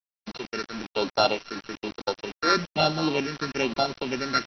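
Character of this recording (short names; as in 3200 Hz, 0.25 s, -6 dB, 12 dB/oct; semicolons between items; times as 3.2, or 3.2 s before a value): a buzz of ramps at a fixed pitch in blocks of 32 samples; phasing stages 6, 1.1 Hz, lowest notch 780–2200 Hz; a quantiser's noise floor 6-bit, dither none; MP2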